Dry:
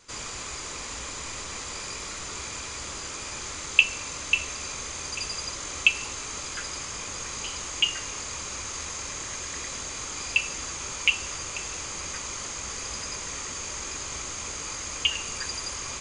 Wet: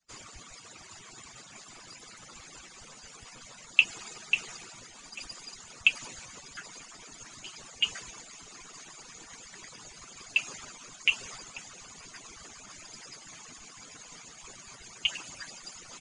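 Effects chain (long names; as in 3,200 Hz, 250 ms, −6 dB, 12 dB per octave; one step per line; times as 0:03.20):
harmonic-percussive split with one part muted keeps percussive
multiband upward and downward expander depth 40%
level −6.5 dB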